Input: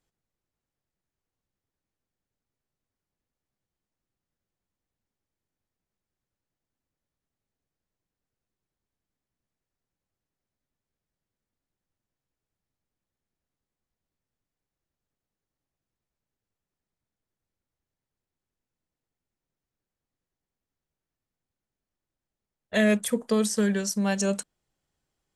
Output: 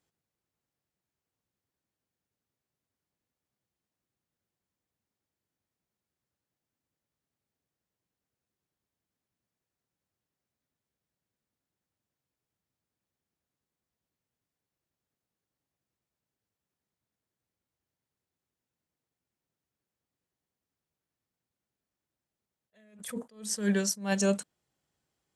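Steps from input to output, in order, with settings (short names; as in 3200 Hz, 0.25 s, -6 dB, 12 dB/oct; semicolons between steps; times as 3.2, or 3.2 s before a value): HPF 78 Hz; attack slew limiter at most 140 dB/s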